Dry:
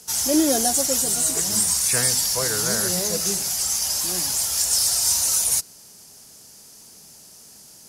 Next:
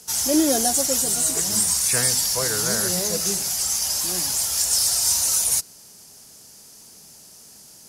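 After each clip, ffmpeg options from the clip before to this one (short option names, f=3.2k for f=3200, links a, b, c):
-af anull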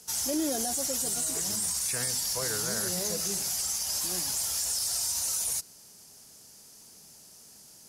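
-af "alimiter=limit=-14.5dB:level=0:latency=1:release=37,volume=-6dB"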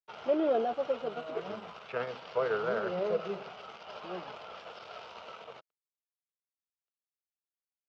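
-af "adynamicsmooth=sensitivity=2.5:basefreq=1.7k,aeval=exprs='sgn(val(0))*max(abs(val(0))-0.00211,0)':c=same,highpass=230,equalizer=f=280:t=q:w=4:g=-9,equalizer=f=450:t=q:w=4:g=8,equalizer=f=630:t=q:w=4:g=6,equalizer=f=1.3k:t=q:w=4:g=9,equalizer=f=1.8k:t=q:w=4:g=-8,equalizer=f=2.9k:t=q:w=4:g=5,lowpass=f=3.2k:w=0.5412,lowpass=f=3.2k:w=1.3066,volume=3.5dB"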